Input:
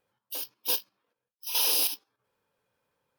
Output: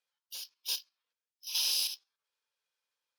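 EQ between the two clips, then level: band-pass 4900 Hz, Q 1.1; 0.0 dB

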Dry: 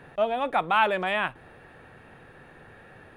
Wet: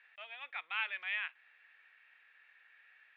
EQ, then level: ladder band-pass 2500 Hz, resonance 50%; air absorption 130 m; high shelf 3500 Hz +7.5 dB; 0.0 dB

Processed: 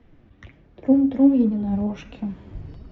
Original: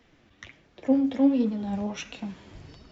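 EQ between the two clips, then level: LPF 4000 Hz 6 dB/oct; tilt -3 dB/oct; 0.0 dB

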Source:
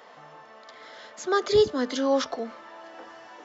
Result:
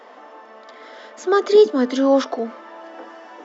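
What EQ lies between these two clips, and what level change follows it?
brick-wall FIR high-pass 210 Hz; tilt -2 dB/oct; notch 4200 Hz, Q 20; +5.5 dB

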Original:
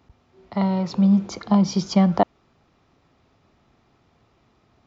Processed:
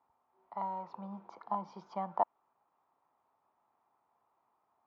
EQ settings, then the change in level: band-pass 930 Hz, Q 4.1; air absorption 65 m; -4.0 dB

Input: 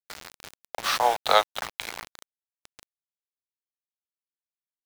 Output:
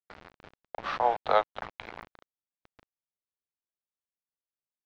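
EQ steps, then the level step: tape spacing loss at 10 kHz 42 dB; 0.0 dB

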